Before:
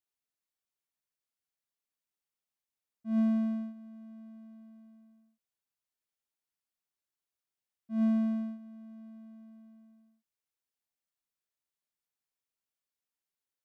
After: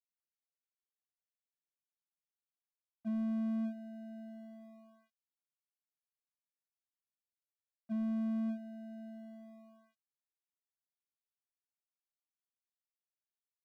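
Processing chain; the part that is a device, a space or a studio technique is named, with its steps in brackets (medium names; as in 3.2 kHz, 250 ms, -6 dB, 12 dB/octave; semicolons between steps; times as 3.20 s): early transistor amplifier (crossover distortion -56.5 dBFS; slew-rate limiter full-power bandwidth 2.8 Hz); trim +4.5 dB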